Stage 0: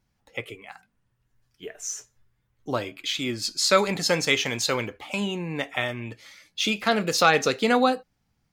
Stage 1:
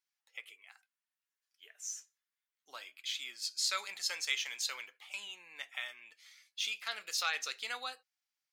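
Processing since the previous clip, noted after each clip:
Bessel high-pass filter 2,200 Hz, order 2
level −8.5 dB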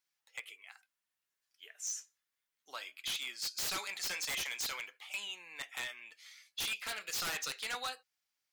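wave folding −34.5 dBFS
level +3.5 dB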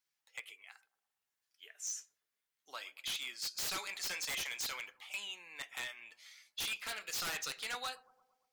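bucket-brigade delay 115 ms, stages 1,024, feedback 59%, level −21 dB
level −1.5 dB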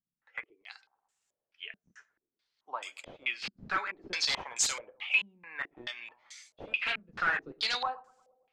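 low-pass on a step sequencer 4.6 Hz 200–7,500 Hz
level +5 dB

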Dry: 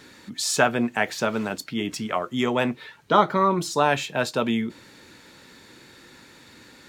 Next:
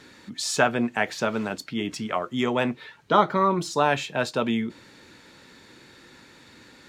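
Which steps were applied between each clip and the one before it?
high-shelf EQ 12,000 Hz −12 dB
level −1 dB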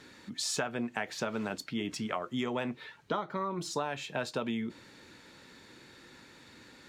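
downward compressor 16 to 1, threshold −25 dBFS, peak gain reduction 14.5 dB
level −4 dB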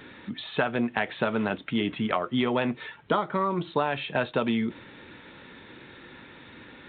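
level +8 dB
G.726 40 kbit/s 8,000 Hz

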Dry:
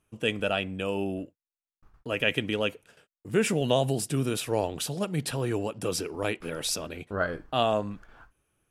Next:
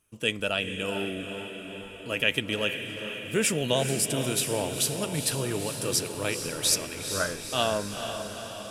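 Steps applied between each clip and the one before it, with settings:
high-shelf EQ 3,100 Hz +11 dB
notch filter 760 Hz, Q 12
on a send: feedback delay with all-pass diffusion 455 ms, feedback 63%, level −7.5 dB
on the sum: level −2.5 dB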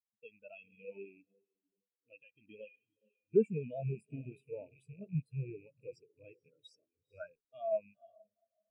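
loose part that buzzes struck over −36 dBFS, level −18 dBFS
brickwall limiter −16 dBFS, peak gain reduction 9.5 dB
every bin expanded away from the loudest bin 4 to 1

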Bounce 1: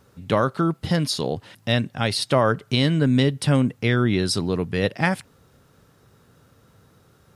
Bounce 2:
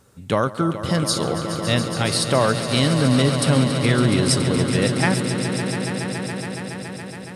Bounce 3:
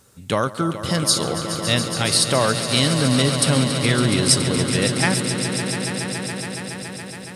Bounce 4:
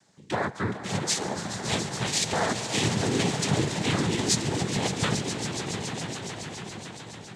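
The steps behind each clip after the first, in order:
parametric band 8,500 Hz +9 dB 0.78 octaves; on a send: echo that builds up and dies away 140 ms, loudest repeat 5, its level −11.5 dB
high-shelf EQ 2,600 Hz +8 dB; level −1.5 dB
cochlear-implant simulation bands 6; level −7 dB

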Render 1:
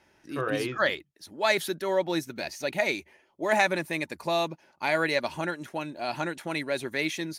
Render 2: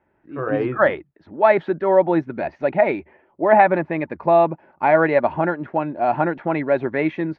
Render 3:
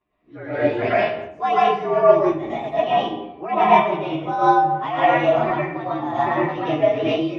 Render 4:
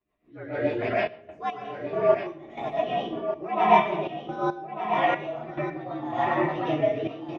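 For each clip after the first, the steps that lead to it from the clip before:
Bessel low-pass filter 1,300 Hz, order 4; automatic gain control gain up to 12 dB; dynamic equaliser 760 Hz, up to +5 dB, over −31 dBFS, Q 2.4; level −1 dB
partials spread apart or drawn together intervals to 115%; comb and all-pass reverb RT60 0.84 s, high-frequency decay 0.6×, pre-delay 75 ms, DRR −8.5 dB; amplitude modulation by smooth noise, depth 65%; level −3.5 dB
rotating-speaker cabinet horn 6.7 Hz, later 0.75 Hz, at 0:01.16; gate pattern "xxxxx.x..x..xx" 70 BPM −12 dB; single-tap delay 1,196 ms −9 dB; level −3.5 dB

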